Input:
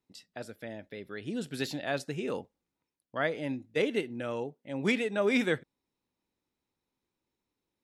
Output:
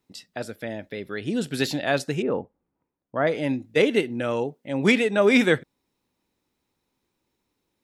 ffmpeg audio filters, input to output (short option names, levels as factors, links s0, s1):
-filter_complex "[0:a]asettb=1/sr,asplit=3[s0][s1][s2];[s0]atrim=end=2.224[s3];[s1]atrim=start=2.22:end=3.27,asetpts=PTS-STARTPTS,afade=t=in:d=0.004:c=qsin,afade=t=out:st=1.046:d=0.004:c=qsin,lowpass=1200[s4];[s2]atrim=start=3.266[s5];[s3][s4]acrossfade=d=0.004:c1=hsin:c2=qsin[s6];[s6][s5]acrossfade=d=0.004:c1=qsin:c2=hsin,volume=2.82"